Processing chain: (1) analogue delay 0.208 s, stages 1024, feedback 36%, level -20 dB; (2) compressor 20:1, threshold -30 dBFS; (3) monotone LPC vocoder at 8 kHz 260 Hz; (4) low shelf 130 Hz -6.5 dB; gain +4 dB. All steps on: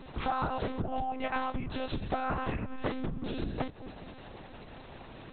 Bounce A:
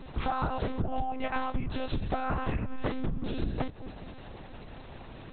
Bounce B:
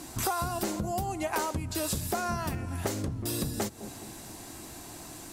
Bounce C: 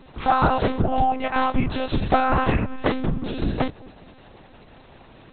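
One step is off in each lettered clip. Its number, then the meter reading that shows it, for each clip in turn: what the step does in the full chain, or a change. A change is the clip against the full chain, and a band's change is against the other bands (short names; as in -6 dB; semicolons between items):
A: 4, 125 Hz band +3.5 dB; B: 3, 4 kHz band +4.5 dB; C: 2, mean gain reduction 7.5 dB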